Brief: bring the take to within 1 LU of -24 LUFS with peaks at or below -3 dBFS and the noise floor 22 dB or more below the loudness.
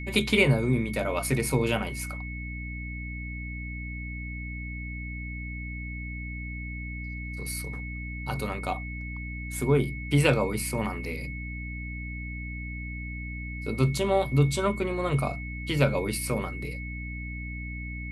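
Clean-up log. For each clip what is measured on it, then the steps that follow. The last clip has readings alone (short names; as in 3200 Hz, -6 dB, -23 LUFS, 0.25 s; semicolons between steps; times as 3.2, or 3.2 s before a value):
hum 60 Hz; harmonics up to 300 Hz; hum level -34 dBFS; steady tone 2200 Hz; tone level -39 dBFS; loudness -29.5 LUFS; peak -8.0 dBFS; loudness target -24.0 LUFS
-> notches 60/120/180/240/300 Hz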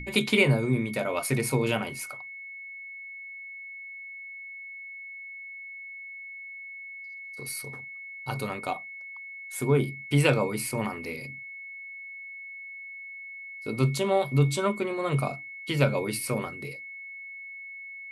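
hum none; steady tone 2200 Hz; tone level -39 dBFS
-> notch 2200 Hz, Q 30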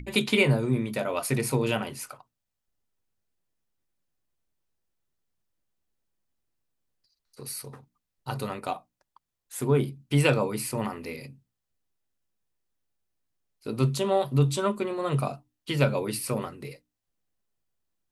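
steady tone none; loudness -27.5 LUFS; peak -7.5 dBFS; loudness target -24.0 LUFS
-> gain +3.5 dB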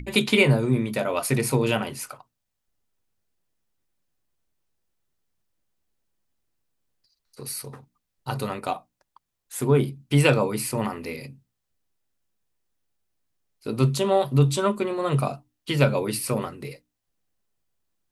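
loudness -24.0 LUFS; peak -4.0 dBFS; noise floor -80 dBFS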